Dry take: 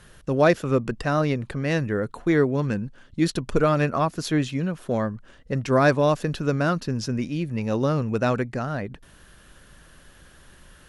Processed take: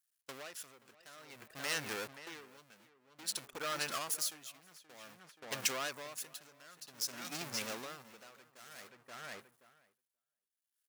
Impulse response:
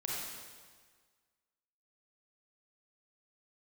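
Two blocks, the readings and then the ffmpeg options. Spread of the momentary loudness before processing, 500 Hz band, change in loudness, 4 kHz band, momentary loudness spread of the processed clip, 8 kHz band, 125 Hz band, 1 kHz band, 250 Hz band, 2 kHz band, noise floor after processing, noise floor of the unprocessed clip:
10 LU, -25.0 dB, -15.5 dB, -4.0 dB, 20 LU, +1.5 dB, -33.0 dB, -18.5 dB, -29.5 dB, -13.0 dB, under -85 dBFS, -52 dBFS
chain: -filter_complex "[0:a]aeval=exprs='val(0)+0.5*0.0376*sgn(val(0))':c=same,agate=range=-38dB:threshold=-26dB:ratio=16:detection=peak,acompressor=threshold=-25dB:ratio=12,afftdn=nr=14:nf=-52,asoftclip=type=tanh:threshold=-29.5dB,adynamicequalizer=threshold=0.00178:dfrequency=3200:dqfactor=1:tfrequency=3200:tqfactor=1:attack=5:release=100:ratio=0.375:range=1.5:mode=cutabove:tftype=bell,asplit=2[a][b];[b]adelay=528,lowpass=f=3k:p=1,volume=-7.5dB,asplit=2[c][d];[d]adelay=528,lowpass=f=3k:p=1,volume=0.17,asplit=2[e][f];[f]adelay=528,lowpass=f=3k:p=1,volume=0.17[g];[a][c][e][g]amix=inputs=4:normalize=0,dynaudnorm=f=110:g=5:m=9dB,aderivative,aeval=exprs='val(0)*pow(10,-21*(0.5-0.5*cos(2*PI*0.53*n/s))/20)':c=same,volume=6dB"

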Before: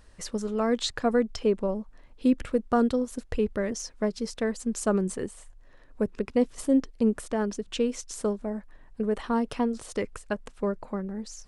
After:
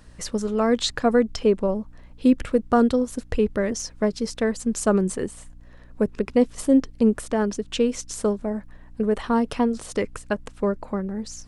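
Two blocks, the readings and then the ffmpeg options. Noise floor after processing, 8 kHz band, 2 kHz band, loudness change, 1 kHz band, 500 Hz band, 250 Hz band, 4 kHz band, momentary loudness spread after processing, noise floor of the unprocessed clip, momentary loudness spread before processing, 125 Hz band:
-46 dBFS, +5.0 dB, +5.0 dB, +5.0 dB, +5.0 dB, +5.0 dB, +5.0 dB, +5.0 dB, 9 LU, -53 dBFS, 9 LU, +5.0 dB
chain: -af "aeval=exprs='val(0)+0.002*(sin(2*PI*60*n/s)+sin(2*PI*2*60*n/s)/2+sin(2*PI*3*60*n/s)/3+sin(2*PI*4*60*n/s)/4+sin(2*PI*5*60*n/s)/5)':c=same,volume=5dB"

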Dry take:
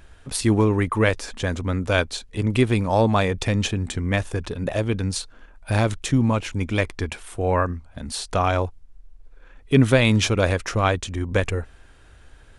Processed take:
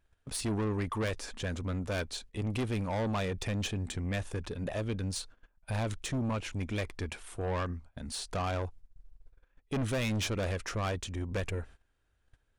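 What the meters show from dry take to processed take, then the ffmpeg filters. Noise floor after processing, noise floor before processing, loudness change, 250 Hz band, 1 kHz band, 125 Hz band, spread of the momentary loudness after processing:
-74 dBFS, -49 dBFS, -12.5 dB, -12.5 dB, -13.0 dB, -11.5 dB, 7 LU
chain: -af "asoftclip=type=tanh:threshold=-20.5dB,agate=range=-18dB:threshold=-41dB:ratio=16:detection=peak,volume=-7.5dB"

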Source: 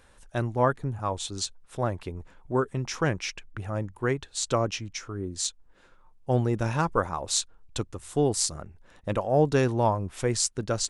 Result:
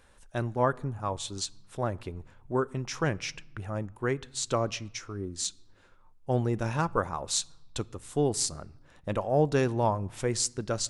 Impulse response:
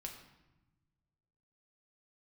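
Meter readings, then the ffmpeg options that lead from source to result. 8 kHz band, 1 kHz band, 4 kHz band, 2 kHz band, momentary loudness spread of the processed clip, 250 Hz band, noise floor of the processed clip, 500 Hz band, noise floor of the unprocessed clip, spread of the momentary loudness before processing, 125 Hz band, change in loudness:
-2.5 dB, -2.5 dB, -2.5 dB, -2.5 dB, 11 LU, -2.5 dB, -58 dBFS, -2.5 dB, -57 dBFS, 11 LU, -3.0 dB, -2.5 dB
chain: -filter_complex "[0:a]asplit=2[a][b];[1:a]atrim=start_sample=2205[c];[b][c]afir=irnorm=-1:irlink=0,volume=-13dB[d];[a][d]amix=inputs=2:normalize=0,volume=-3.5dB"

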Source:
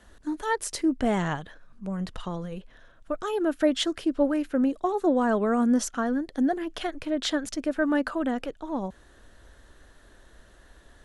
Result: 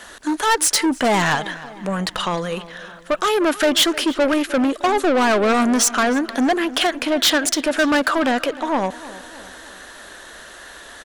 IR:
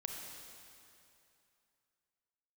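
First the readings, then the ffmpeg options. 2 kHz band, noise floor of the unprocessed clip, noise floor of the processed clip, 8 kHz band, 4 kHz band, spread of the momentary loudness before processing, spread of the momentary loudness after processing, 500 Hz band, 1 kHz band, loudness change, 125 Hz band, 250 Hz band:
+14.0 dB, -55 dBFS, -41 dBFS, +16.5 dB, +15.0 dB, 12 LU, 22 LU, +8.0 dB, +11.5 dB, +8.5 dB, +5.0 dB, +5.0 dB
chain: -filter_complex "[0:a]asplit=2[a][b];[b]highpass=f=720:p=1,volume=24dB,asoftclip=type=tanh:threshold=-10.5dB[c];[a][c]amix=inputs=2:normalize=0,lowpass=f=1k:p=1,volume=-6dB,crystalizer=i=9.5:c=0,asplit=2[d][e];[e]adelay=307,lowpass=f=4k:p=1,volume=-17dB,asplit=2[f][g];[g]adelay=307,lowpass=f=4k:p=1,volume=0.53,asplit=2[h][i];[i]adelay=307,lowpass=f=4k:p=1,volume=0.53,asplit=2[j][k];[k]adelay=307,lowpass=f=4k:p=1,volume=0.53,asplit=2[l][m];[m]adelay=307,lowpass=f=4k:p=1,volume=0.53[n];[d][f][h][j][l][n]amix=inputs=6:normalize=0"

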